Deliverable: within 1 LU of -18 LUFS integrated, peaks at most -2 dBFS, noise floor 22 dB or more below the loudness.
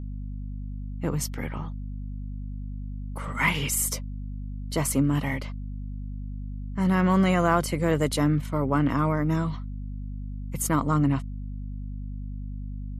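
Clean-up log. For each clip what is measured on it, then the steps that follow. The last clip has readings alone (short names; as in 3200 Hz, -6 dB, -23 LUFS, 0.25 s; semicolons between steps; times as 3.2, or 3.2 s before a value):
hum 50 Hz; harmonics up to 250 Hz; hum level -32 dBFS; loudness -28.0 LUFS; peak -8.0 dBFS; loudness target -18.0 LUFS
-> de-hum 50 Hz, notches 5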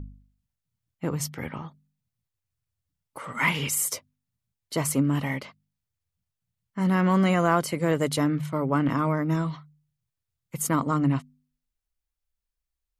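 hum none; loudness -25.5 LUFS; peak -8.5 dBFS; loudness target -18.0 LUFS
-> gain +7.5 dB; limiter -2 dBFS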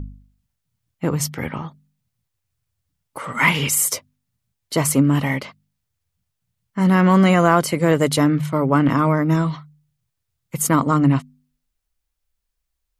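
loudness -18.5 LUFS; peak -2.0 dBFS; noise floor -78 dBFS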